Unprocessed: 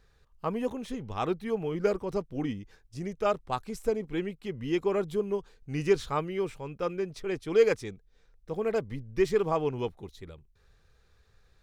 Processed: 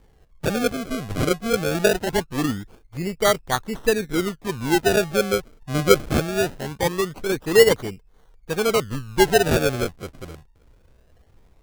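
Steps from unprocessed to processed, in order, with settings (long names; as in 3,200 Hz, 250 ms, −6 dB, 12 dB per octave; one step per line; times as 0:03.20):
high-shelf EQ 7,800 Hz −5 dB
sample-and-hold swept by an LFO 33×, swing 100% 0.22 Hz
level +8.5 dB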